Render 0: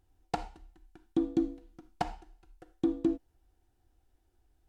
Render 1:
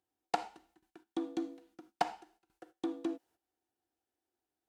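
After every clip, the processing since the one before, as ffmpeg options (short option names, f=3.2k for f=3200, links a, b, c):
-filter_complex "[0:a]agate=range=-12dB:threshold=-57dB:ratio=16:detection=peak,highpass=260,acrossover=split=550|1600[a][b][c];[a]alimiter=level_in=8dB:limit=-24dB:level=0:latency=1:release=465,volume=-8dB[d];[d][b][c]amix=inputs=3:normalize=0,volume=2dB"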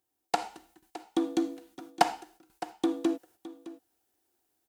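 -af "highshelf=f=7k:g=10.5,dynaudnorm=f=290:g=3:m=6.5dB,aecho=1:1:613:0.15,volume=2dB"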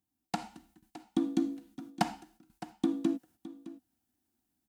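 -af "lowshelf=f=310:t=q:w=3:g=10,volume=-6dB"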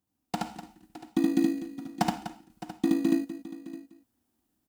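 -filter_complex "[0:a]aecho=1:1:72.89|247.8:0.794|0.251,asplit=2[a][b];[b]acrusher=samples=20:mix=1:aa=0.000001,volume=-8dB[c];[a][c]amix=inputs=2:normalize=0"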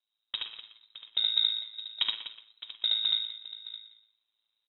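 -filter_complex "[0:a]asplit=2[a][b];[b]adelay=120,highpass=300,lowpass=3.4k,asoftclip=type=hard:threshold=-20.5dB,volume=-10dB[c];[a][c]amix=inputs=2:normalize=0,lowpass=f=3.4k:t=q:w=0.5098,lowpass=f=3.4k:t=q:w=0.6013,lowpass=f=3.4k:t=q:w=0.9,lowpass=f=3.4k:t=q:w=2.563,afreqshift=-4000,aeval=exprs='val(0)*sin(2*PI*55*n/s)':c=same"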